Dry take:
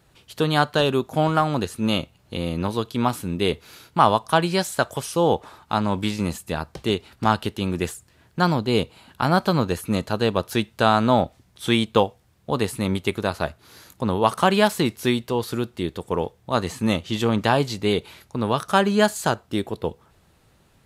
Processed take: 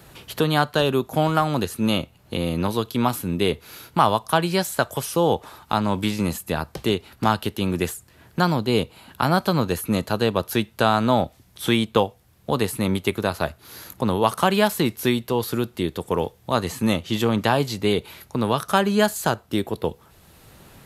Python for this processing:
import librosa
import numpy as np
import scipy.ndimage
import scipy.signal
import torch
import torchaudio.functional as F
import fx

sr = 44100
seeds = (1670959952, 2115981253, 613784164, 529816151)

y = fx.peak_eq(x, sr, hz=12000.0, db=10.0, octaves=0.26)
y = fx.band_squash(y, sr, depth_pct=40)